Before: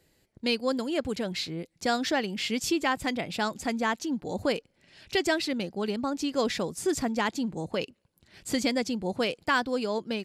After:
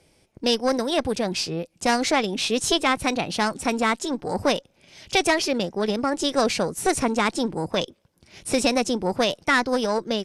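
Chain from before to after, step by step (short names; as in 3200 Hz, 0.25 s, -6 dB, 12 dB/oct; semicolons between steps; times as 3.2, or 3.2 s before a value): one diode to ground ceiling -21.5 dBFS; downsampling 22050 Hz; formant shift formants +3 st; gain +7 dB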